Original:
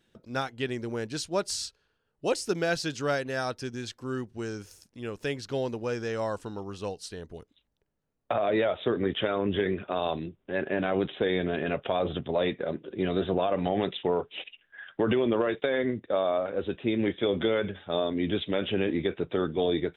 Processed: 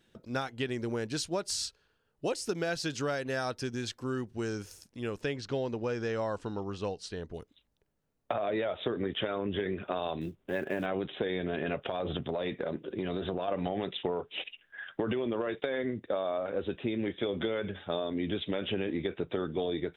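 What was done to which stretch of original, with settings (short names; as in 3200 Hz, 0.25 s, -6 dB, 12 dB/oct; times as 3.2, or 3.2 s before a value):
5.21–7.34 air absorption 70 m
10.21–10.86 short-mantissa float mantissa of 4-bit
11.76–13.48 compressor, threshold -28 dBFS
whole clip: compressor, threshold -30 dBFS; gain +1.5 dB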